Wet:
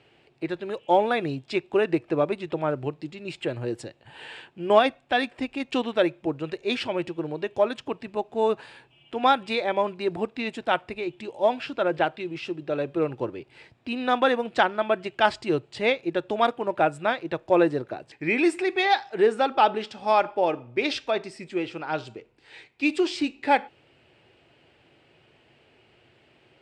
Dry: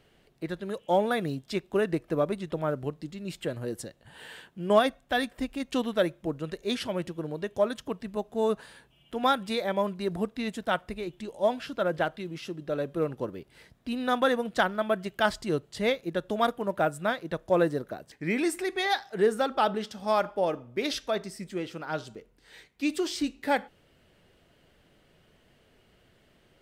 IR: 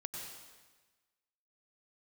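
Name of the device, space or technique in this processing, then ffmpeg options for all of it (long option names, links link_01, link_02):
car door speaker: -af "highpass=91,equalizer=frequency=120:width_type=q:width=4:gain=4,equalizer=frequency=190:width_type=q:width=4:gain=-8,equalizer=frequency=350:width_type=q:width=4:gain=5,equalizer=frequency=840:width_type=q:width=4:gain=6,equalizer=frequency=2500:width_type=q:width=4:gain=9,equalizer=frequency=6200:width_type=q:width=4:gain=-7,lowpass=frequency=7500:width=0.5412,lowpass=frequency=7500:width=1.3066,volume=2dB"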